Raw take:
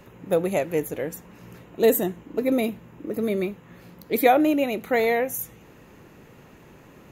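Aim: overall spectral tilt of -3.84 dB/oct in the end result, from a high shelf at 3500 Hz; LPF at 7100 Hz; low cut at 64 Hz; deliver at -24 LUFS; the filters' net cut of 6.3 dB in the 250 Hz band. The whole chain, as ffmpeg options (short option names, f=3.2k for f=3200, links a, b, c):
-af "highpass=64,lowpass=7.1k,equalizer=f=250:t=o:g=-8,highshelf=f=3.5k:g=-3.5,volume=2.5dB"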